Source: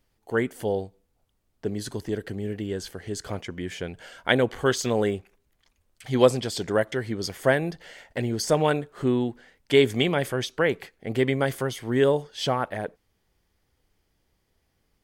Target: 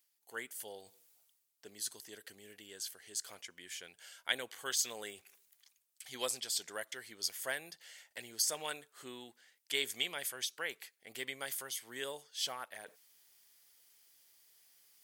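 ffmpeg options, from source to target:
-af "aderivative,areverse,acompressor=mode=upward:threshold=-53dB:ratio=2.5,areverse"

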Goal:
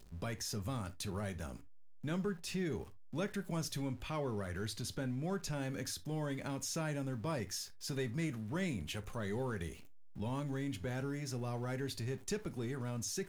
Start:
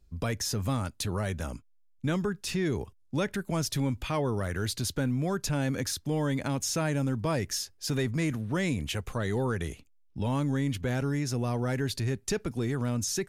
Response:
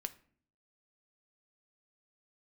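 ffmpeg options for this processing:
-filter_complex "[0:a]aeval=exprs='val(0)+0.5*0.00596*sgn(val(0))':c=same,asettb=1/sr,asplit=3[a][b][c];[a]atrim=end=3.884[d];[b]atrim=start=3.88:end=5.49,asetpts=PTS-STARTPTS,afade=t=in:d=0.004:c=qsin,afade=t=out:st=1.606:d=0.004:c=qsin,highshelf=f=10k:g=-5[e];[c]atrim=start=5.486[f];[d][e]acrossfade=d=0.004:c1=hsin:c2=qsin[g];[g][f]acrossfade=d=0.004:c1=qsin:c2=hsin[h];[1:a]atrim=start_sample=2205,atrim=end_sample=3528[i];[h][i]afir=irnorm=-1:irlink=0,volume=-7.5dB"

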